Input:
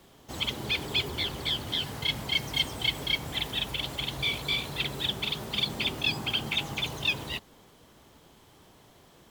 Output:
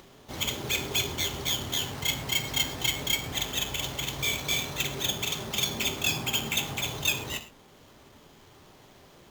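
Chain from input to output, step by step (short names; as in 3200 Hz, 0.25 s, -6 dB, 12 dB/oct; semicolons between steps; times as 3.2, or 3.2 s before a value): non-linear reverb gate 0.15 s falling, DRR 5.5 dB; upward compressor, threshold -49 dBFS; sample-rate reducer 10000 Hz, jitter 0%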